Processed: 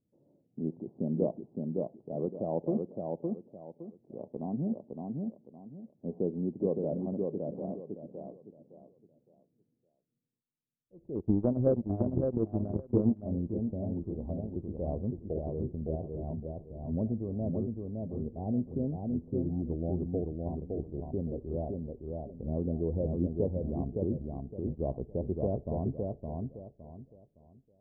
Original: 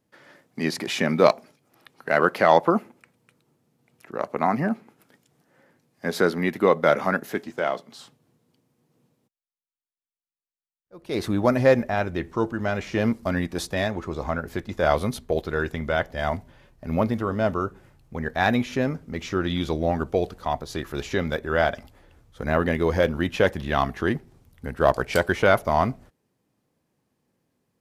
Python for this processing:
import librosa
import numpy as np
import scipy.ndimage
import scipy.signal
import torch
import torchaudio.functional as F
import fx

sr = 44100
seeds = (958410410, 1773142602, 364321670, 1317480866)

y = scipy.ndimage.gaussian_filter1d(x, 18.0, mode='constant')
y = fx.echo_feedback(y, sr, ms=563, feedback_pct=28, wet_db=-3.5)
y = fx.transient(y, sr, attack_db=10, sustain_db=-12, at=(11.15, 13.23))
y = y * 10.0 ** (-5.5 / 20.0)